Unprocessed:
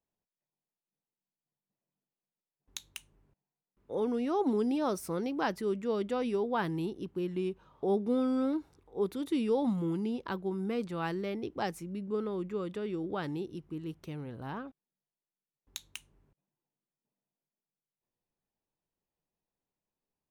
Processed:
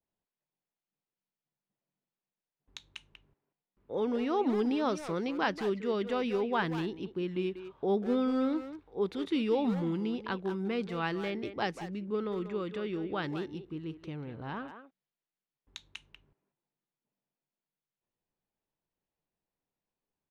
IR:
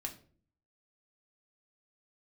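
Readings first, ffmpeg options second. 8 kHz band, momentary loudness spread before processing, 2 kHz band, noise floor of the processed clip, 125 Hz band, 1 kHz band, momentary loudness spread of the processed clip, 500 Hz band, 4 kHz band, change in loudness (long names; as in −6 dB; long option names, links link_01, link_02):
can't be measured, 15 LU, +4.5 dB, below −85 dBFS, 0.0 dB, +1.5 dB, 17 LU, +0.5 dB, +3.5 dB, +0.5 dB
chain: -filter_complex "[0:a]lowpass=3800,asplit=2[link_01][link_02];[link_02]adelay=190,highpass=300,lowpass=3400,asoftclip=type=hard:threshold=-29.5dB,volume=-9dB[link_03];[link_01][link_03]amix=inputs=2:normalize=0,adynamicequalizer=threshold=0.00398:dfrequency=1500:dqfactor=0.7:tfrequency=1500:tqfactor=0.7:attack=5:release=100:ratio=0.375:range=3.5:mode=boostabove:tftype=highshelf"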